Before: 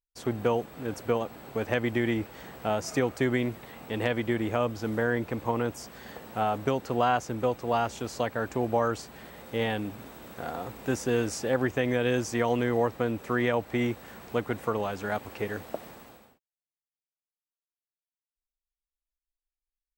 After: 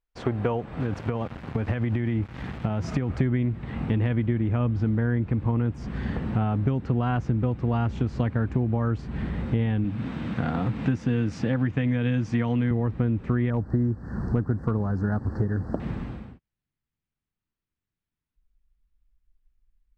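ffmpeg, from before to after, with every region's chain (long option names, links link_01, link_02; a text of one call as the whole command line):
ffmpeg -i in.wav -filter_complex "[0:a]asettb=1/sr,asplit=3[link_01][link_02][link_03];[link_01]atrim=end=0.804[link_04];[link_02]atrim=start=0.8:end=3.1,asetpts=PTS-STARTPTS,afade=type=in:duration=0.004:curve=qsin,afade=type=out:start_time=2.296:duration=0.004:curve=qsin,aeval=exprs='val(0)*gte(abs(val(0)),0.00794)':channel_layout=same,highpass=55,acompressor=threshold=-31dB:ratio=4:attack=3.2:release=140:knee=1:detection=peak[link_05];[link_03]atrim=start=3.096[link_06];[link_04][link_05]acrossfade=duration=0.004:curve1=hsin:curve2=qsin[link_07];[link_07][link_06]acrossfade=duration=0.004:curve1=qsin:curve2=hsin,asettb=1/sr,asplit=3[link_08][link_09][link_10];[link_08]atrim=end=9.844[link_11];[link_09]atrim=start=9.84:end=12.71,asetpts=PTS-STARTPTS,afade=type=in:duration=0.004:curve=qsin,afade=type=out:start_time=2.866:duration=0.004:curve=qsin,highpass=120,equalizer=frequency=3500:width_type=o:width=2.1:gain=5,bandreject=frequency=380:width=5.4[link_12];[link_10]atrim=start=12.706[link_13];[link_11][link_12]acrossfade=duration=0.004:curve1=hsin:curve2=qsin[link_14];[link_14][link_13]acrossfade=duration=0.004:curve1=qsin:curve2=hsin,asettb=1/sr,asplit=3[link_15][link_16][link_17];[link_15]atrim=end=13.504[link_18];[link_16]atrim=start=13.5:end=15.8,asetpts=PTS-STARTPTS,afade=type=in:duration=0.004:curve=qsin,afade=type=out:start_time=2.296:duration=0.004:curve=qsin,asuperstop=centerf=2800:order=12:qfactor=1.1,asoftclip=type=hard:threshold=-17dB,acrusher=bits=7:mode=log:mix=0:aa=0.000001[link_19];[link_17]atrim=start=15.796[link_20];[link_18][link_19]acrossfade=duration=0.004:curve1=hsin:curve2=qsin[link_21];[link_21][link_20]acrossfade=duration=0.004:curve1=qsin:curve2=hsin,lowpass=2500,asubboost=boost=9.5:cutoff=190,acompressor=threshold=-31dB:ratio=6,volume=9dB" out.wav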